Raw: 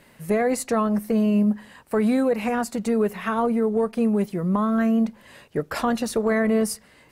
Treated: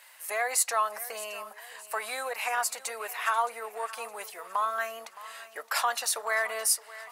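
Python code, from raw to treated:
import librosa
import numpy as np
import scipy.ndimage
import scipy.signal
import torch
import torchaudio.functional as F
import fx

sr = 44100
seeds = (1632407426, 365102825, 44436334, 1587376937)

p1 = scipy.signal.sosfilt(scipy.signal.butter(4, 770.0, 'highpass', fs=sr, output='sos'), x)
p2 = fx.high_shelf(p1, sr, hz=4600.0, db=8.0)
y = p2 + fx.echo_feedback(p2, sr, ms=617, feedback_pct=44, wet_db=-17, dry=0)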